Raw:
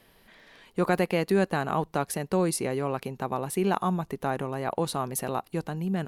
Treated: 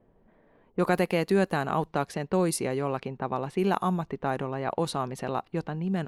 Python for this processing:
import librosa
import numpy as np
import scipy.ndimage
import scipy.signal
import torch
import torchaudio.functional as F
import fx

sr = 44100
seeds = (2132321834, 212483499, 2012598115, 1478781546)

y = fx.env_lowpass(x, sr, base_hz=630.0, full_db=-22.5)